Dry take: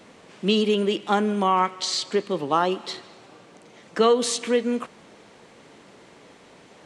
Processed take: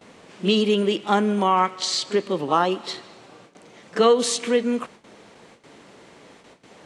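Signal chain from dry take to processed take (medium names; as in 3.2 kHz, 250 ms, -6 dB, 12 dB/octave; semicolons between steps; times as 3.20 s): gate with hold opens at -40 dBFS; pre-echo 34 ms -16 dB; trim +1.5 dB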